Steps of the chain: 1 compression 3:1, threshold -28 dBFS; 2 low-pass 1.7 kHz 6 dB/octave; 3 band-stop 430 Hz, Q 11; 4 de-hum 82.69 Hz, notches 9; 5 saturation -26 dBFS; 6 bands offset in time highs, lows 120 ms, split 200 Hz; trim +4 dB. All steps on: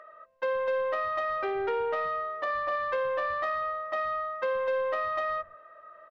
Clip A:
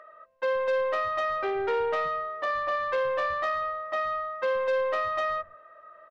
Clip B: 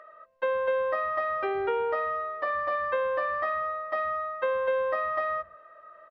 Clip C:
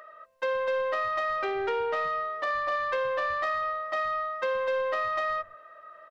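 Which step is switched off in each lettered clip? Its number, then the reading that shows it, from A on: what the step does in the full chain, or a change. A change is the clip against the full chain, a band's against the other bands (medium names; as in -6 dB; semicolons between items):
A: 1, mean gain reduction 2.0 dB; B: 5, distortion -20 dB; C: 2, 4 kHz band +3.5 dB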